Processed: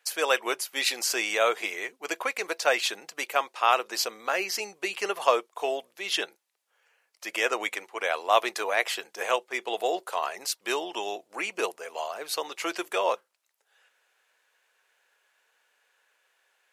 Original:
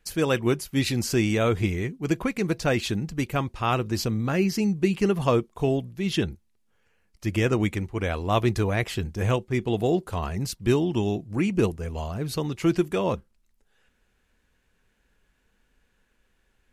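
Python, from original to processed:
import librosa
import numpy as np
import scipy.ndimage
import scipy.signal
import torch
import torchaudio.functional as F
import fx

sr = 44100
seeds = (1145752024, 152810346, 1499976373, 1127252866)

y = scipy.signal.sosfilt(scipy.signal.butter(4, 560.0, 'highpass', fs=sr, output='sos'), x)
y = y * 10.0 ** (4.0 / 20.0)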